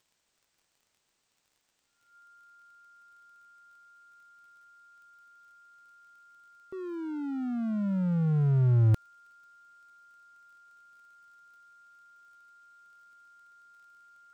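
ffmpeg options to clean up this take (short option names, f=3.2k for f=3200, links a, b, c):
-af "adeclick=t=4,bandreject=f=1.4k:w=30,agate=range=-21dB:threshold=-68dB"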